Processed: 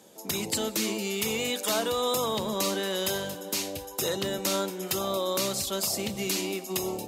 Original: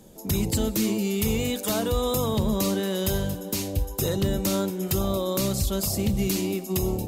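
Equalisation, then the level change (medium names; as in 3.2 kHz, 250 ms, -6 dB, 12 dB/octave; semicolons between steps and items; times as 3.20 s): frequency weighting A; +1.5 dB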